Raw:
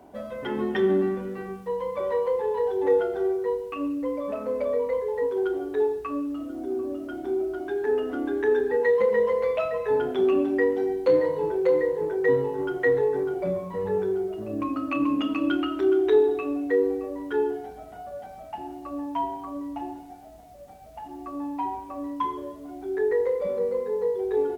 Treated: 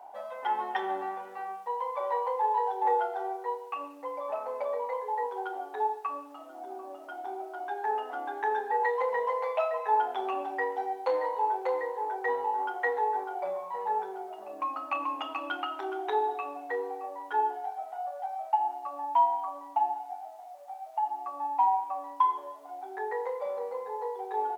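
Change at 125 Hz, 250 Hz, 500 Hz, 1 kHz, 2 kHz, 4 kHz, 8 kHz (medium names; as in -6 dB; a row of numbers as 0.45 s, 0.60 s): under -30 dB, -20.0 dB, -11.0 dB, +7.0 dB, -3.0 dB, -4.5 dB, no reading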